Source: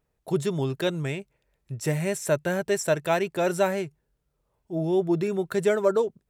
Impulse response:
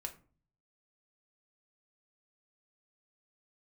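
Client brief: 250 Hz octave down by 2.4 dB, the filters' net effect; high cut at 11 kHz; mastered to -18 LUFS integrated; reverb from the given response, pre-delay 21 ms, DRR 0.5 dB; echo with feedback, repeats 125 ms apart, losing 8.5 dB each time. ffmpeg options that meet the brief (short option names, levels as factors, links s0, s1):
-filter_complex "[0:a]lowpass=11000,equalizer=f=250:t=o:g=-4.5,aecho=1:1:125|250|375|500:0.376|0.143|0.0543|0.0206,asplit=2[s0][s1];[1:a]atrim=start_sample=2205,adelay=21[s2];[s1][s2]afir=irnorm=-1:irlink=0,volume=1.19[s3];[s0][s3]amix=inputs=2:normalize=0,volume=2.11"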